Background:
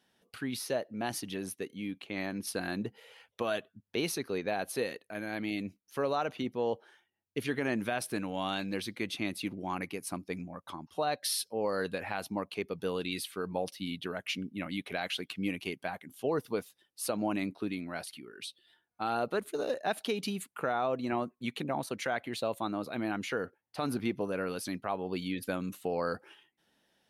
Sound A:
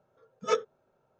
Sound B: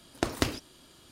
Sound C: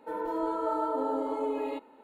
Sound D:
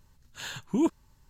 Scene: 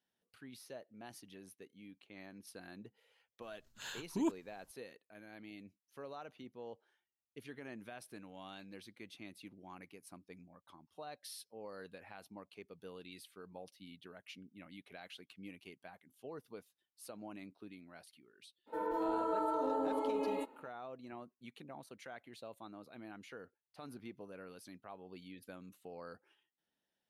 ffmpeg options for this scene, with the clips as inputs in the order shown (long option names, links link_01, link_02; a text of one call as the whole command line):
ffmpeg -i bed.wav -i cue0.wav -i cue1.wav -i cue2.wav -i cue3.wav -filter_complex "[0:a]volume=-17dB[link_01];[4:a]equalizer=frequency=61:width_type=o:width=2.8:gain=-9.5[link_02];[3:a]acompressor=threshold=-31dB:ratio=6:attack=18:release=49:knee=1:detection=peak[link_03];[link_02]atrim=end=1.29,asetpts=PTS-STARTPTS,volume=-7.5dB,afade=type=in:duration=0.004:curve=hsin,afade=type=out:start_time=1.286:duration=0.004:curve=hsin,adelay=3420[link_04];[link_03]atrim=end=2.03,asetpts=PTS-STARTPTS,volume=-3.5dB,afade=type=in:duration=0.02,afade=type=out:start_time=2.01:duration=0.02,adelay=18660[link_05];[link_01][link_04][link_05]amix=inputs=3:normalize=0" out.wav